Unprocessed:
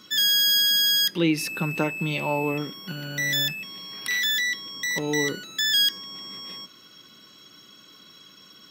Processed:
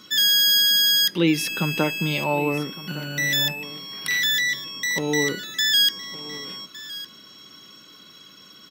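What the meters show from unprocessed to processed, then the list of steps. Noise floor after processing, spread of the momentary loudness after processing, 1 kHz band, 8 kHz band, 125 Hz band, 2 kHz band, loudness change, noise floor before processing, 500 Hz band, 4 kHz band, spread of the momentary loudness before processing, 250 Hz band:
-48 dBFS, 18 LU, +2.5 dB, +2.5 dB, +2.5 dB, +2.5 dB, +2.5 dB, -51 dBFS, +2.5 dB, +2.5 dB, 18 LU, +2.5 dB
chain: delay 1160 ms -17 dB; trim +2.5 dB

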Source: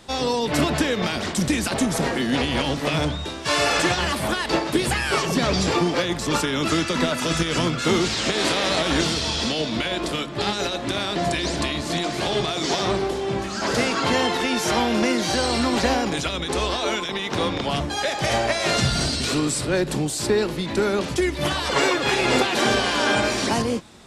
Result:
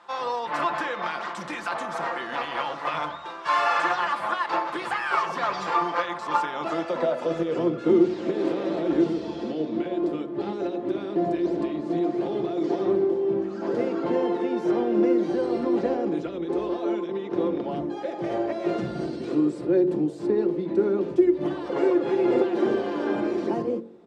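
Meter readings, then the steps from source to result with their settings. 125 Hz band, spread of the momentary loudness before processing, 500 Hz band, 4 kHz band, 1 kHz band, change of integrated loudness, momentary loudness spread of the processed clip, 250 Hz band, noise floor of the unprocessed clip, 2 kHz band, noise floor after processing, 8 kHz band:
-11.5 dB, 5 LU, -0.5 dB, -17.5 dB, -2.5 dB, -3.5 dB, 8 LU, -1.0 dB, -30 dBFS, -8.5 dB, -36 dBFS, under -20 dB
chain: bass shelf 130 Hz -3.5 dB; comb 5.8 ms, depth 47%; de-hum 45.73 Hz, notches 14; band-pass sweep 1.1 kHz -> 350 Hz, 6.12–7.91 s; trim +4 dB

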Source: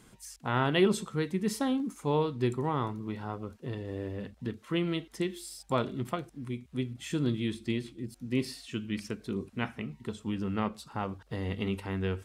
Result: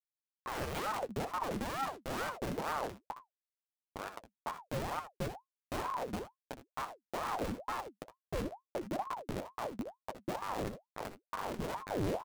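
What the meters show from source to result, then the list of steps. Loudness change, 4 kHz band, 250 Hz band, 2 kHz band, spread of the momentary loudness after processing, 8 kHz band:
-6.5 dB, -8.0 dB, -11.5 dB, -4.5 dB, 9 LU, -5.0 dB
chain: local Wiener filter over 9 samples; Schmitt trigger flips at -30.5 dBFS; flange 0.78 Hz, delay 5 ms, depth 7 ms, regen +34%; early reflections 63 ms -11.5 dB, 78 ms -14 dB; ring modulator with a swept carrier 640 Hz, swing 70%, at 2.2 Hz; trim +3 dB

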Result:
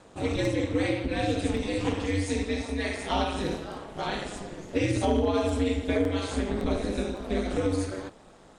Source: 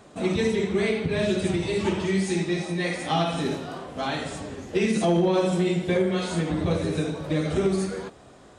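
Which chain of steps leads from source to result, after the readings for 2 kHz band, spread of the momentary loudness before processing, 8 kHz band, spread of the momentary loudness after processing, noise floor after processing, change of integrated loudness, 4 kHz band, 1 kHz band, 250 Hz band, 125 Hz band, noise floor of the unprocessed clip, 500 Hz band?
-3.0 dB, 9 LU, -3.0 dB, 8 LU, -53 dBFS, -3.5 dB, -3.0 dB, -2.0 dB, -3.0 dB, -4.0 dB, -50 dBFS, -4.0 dB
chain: ring modulator 100 Hz; crackling interface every 0.56 s, samples 64, zero, from 0.45 s

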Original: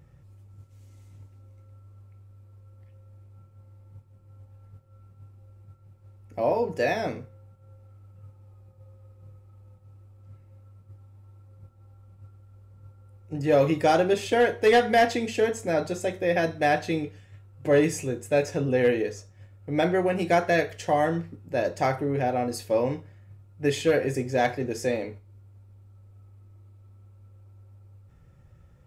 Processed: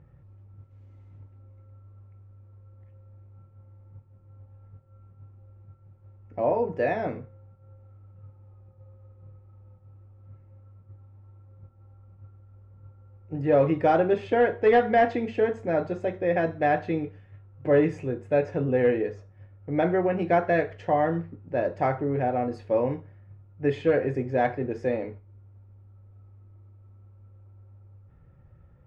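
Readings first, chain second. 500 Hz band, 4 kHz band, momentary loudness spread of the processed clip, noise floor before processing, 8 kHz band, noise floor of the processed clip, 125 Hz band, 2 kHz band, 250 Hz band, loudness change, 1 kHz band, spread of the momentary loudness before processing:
0.0 dB, under -10 dB, 10 LU, -55 dBFS, under -20 dB, -55 dBFS, 0.0 dB, -3.0 dB, 0.0 dB, -0.5 dB, 0.0 dB, 10 LU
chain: low-pass 1.8 kHz 12 dB/octave

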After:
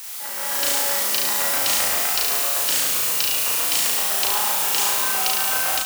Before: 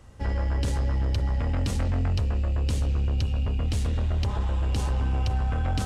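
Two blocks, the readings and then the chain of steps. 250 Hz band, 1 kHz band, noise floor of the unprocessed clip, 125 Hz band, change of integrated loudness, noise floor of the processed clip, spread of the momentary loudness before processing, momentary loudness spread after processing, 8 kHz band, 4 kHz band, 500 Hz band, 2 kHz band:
-8.0 dB, +10.5 dB, -28 dBFS, under -25 dB, +9.0 dB, -30 dBFS, 1 LU, 1 LU, +25.5 dB, +18.0 dB, +5.0 dB, +15.5 dB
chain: added noise white -42 dBFS; high-pass 890 Hz 12 dB/octave; treble shelf 5.8 kHz +7 dB; flutter echo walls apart 6.1 m, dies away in 1 s; level rider gain up to 10.5 dB

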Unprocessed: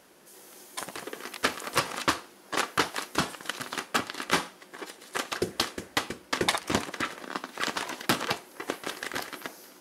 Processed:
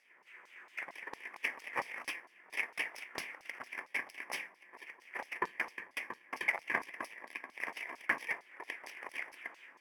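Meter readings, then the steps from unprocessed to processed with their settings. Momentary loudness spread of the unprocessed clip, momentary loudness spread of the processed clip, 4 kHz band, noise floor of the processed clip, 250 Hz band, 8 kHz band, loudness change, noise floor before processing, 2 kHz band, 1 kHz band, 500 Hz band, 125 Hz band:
13 LU, 12 LU, -18.0 dB, -65 dBFS, -19.5 dB, -19.0 dB, -9.0 dB, -54 dBFS, -4.5 dB, -12.0 dB, -15.0 dB, under -20 dB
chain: bit-reversed sample order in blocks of 32 samples; resonant high shelf 2.9 kHz -10.5 dB, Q 3; LFO band-pass saw down 4.4 Hz 940–5000 Hz; trim +4.5 dB

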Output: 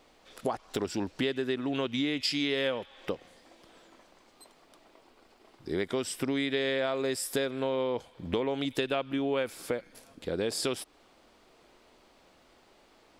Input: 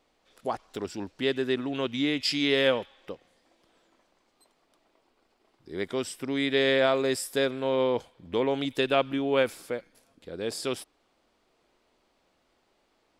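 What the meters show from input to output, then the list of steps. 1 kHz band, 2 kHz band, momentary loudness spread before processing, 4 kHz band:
-4.5 dB, -4.5 dB, 14 LU, -3.5 dB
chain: compression 6:1, threshold -37 dBFS, peak gain reduction 17 dB; trim +9 dB

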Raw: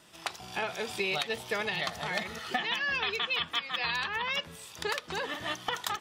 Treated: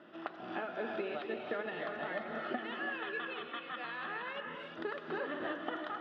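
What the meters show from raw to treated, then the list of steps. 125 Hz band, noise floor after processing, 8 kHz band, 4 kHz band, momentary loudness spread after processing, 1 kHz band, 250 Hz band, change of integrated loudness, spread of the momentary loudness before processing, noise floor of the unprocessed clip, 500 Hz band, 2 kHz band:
-10.0 dB, -49 dBFS, under -35 dB, -16.5 dB, 4 LU, -6.0 dB, +1.0 dB, -8.0 dB, 6 LU, -50 dBFS, -2.0 dB, -8.0 dB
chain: compression 4:1, threshold -40 dBFS, peak gain reduction 13 dB; cabinet simulation 220–2600 Hz, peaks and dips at 240 Hz +9 dB, 330 Hz +9 dB, 600 Hz +6 dB, 950 Hz -5 dB, 1.4 kHz +5 dB, 2.3 kHz -10 dB; gated-style reverb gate 370 ms rising, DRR 3 dB; trim +1.5 dB

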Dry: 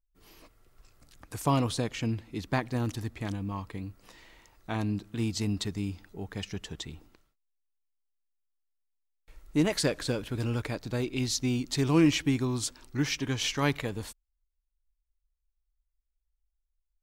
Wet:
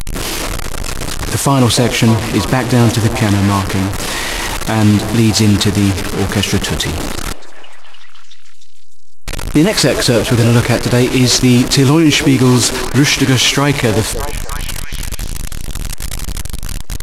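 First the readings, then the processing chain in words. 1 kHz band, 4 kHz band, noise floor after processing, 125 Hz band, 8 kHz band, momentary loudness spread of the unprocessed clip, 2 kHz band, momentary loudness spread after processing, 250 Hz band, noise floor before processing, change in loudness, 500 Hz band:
+18.5 dB, +20.5 dB, -19 dBFS, +19.5 dB, +21.0 dB, 14 LU, +20.0 dB, 14 LU, +17.5 dB, -81 dBFS, +17.5 dB, +18.5 dB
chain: one-bit delta coder 64 kbps, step -34.5 dBFS; repeats whose band climbs or falls 302 ms, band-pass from 500 Hz, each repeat 0.7 oct, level -11 dB; loudness maximiser +23 dB; trim -1 dB

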